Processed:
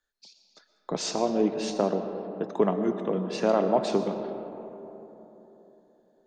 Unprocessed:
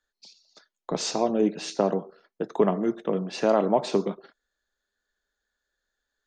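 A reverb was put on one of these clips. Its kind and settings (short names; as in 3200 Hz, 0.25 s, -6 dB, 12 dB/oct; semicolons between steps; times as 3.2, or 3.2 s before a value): digital reverb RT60 3.6 s, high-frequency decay 0.35×, pre-delay 80 ms, DRR 8 dB; gain -2 dB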